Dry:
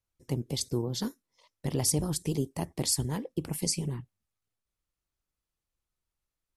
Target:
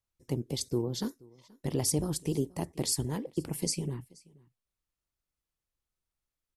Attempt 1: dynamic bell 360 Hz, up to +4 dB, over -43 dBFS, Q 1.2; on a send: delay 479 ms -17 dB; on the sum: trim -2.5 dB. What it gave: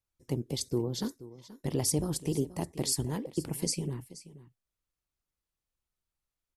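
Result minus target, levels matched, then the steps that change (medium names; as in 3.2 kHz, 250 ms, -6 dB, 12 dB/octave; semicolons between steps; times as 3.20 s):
echo-to-direct +8 dB
change: delay 479 ms -25 dB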